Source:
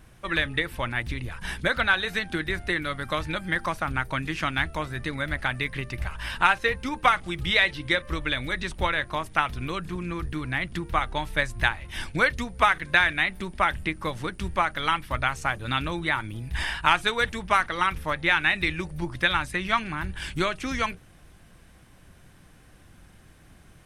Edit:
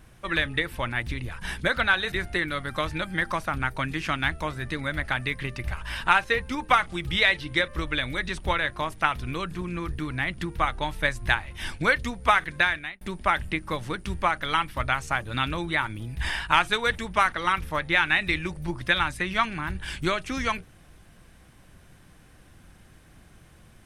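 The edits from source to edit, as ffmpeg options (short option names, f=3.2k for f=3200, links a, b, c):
-filter_complex "[0:a]asplit=3[a][b][c];[a]atrim=end=2.122[d];[b]atrim=start=2.458:end=13.35,asetpts=PTS-STARTPTS,afade=t=out:st=10.402:d=0.49[e];[c]atrim=start=13.35,asetpts=PTS-STARTPTS,afade=t=in:d=0.004:c=hsin[f];[e][f]concat=n=2:v=0:a=1[g];[d][g]acrossfade=d=0.004:c1=hsin:c2=hsin"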